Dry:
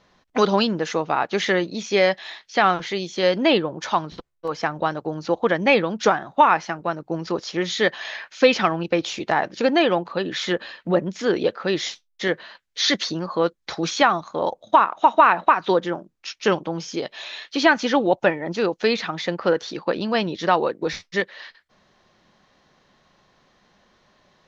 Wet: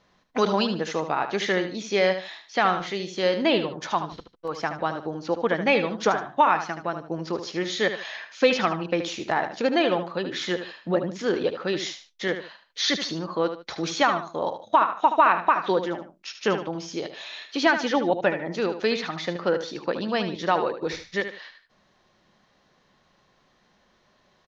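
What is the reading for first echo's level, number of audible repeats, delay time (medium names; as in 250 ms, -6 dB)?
-9.5 dB, 2, 75 ms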